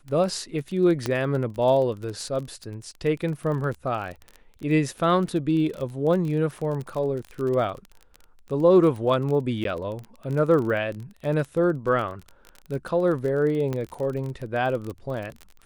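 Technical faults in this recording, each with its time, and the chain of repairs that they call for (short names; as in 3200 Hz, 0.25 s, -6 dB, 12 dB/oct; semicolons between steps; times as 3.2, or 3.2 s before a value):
crackle 29/s -30 dBFS
1.06 pop -12 dBFS
9.64–9.65 gap 12 ms
13.73 pop -17 dBFS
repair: de-click; interpolate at 9.64, 12 ms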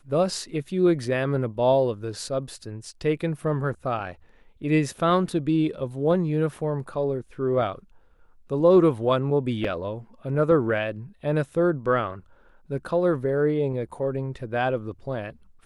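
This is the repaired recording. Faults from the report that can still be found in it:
none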